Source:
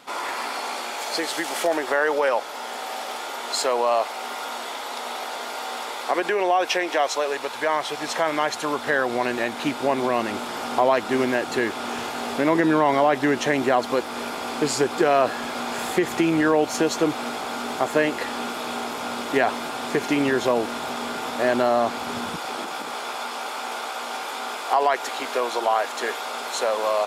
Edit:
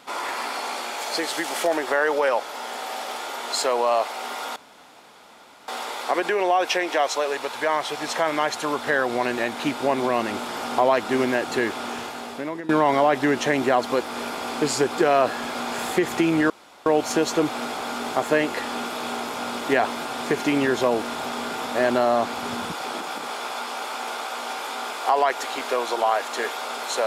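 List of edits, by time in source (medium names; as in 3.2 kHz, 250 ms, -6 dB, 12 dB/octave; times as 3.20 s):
4.56–5.68 s: room tone
11.73–12.69 s: fade out linear, to -18.5 dB
16.50 s: insert room tone 0.36 s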